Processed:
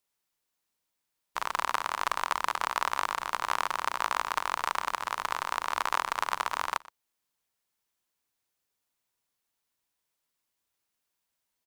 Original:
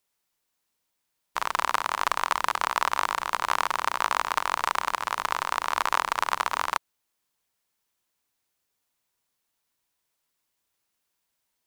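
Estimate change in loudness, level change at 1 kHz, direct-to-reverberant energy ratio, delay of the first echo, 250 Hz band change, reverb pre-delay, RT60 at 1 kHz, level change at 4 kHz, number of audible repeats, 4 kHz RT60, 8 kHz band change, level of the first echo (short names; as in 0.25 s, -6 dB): -4.0 dB, -4.0 dB, none, 0.121 s, -4.0 dB, none, none, -4.0 dB, 1, none, -4.0 dB, -21.0 dB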